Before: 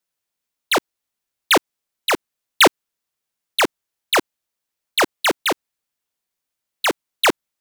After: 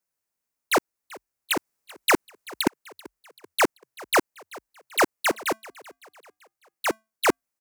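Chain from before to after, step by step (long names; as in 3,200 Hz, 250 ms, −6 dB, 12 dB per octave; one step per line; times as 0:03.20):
parametric band 3,400 Hz −9.5 dB 0.69 octaves
0:01.52–0:02.67: compressor whose output falls as the input rises −18 dBFS, ratio −0.5
0:05.27–0:07.29: tuned comb filter 220 Hz, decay 0.25 s, harmonics odd, mix 30%
echo with shifted repeats 386 ms, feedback 47%, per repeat +41 Hz, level −21 dB
level −2 dB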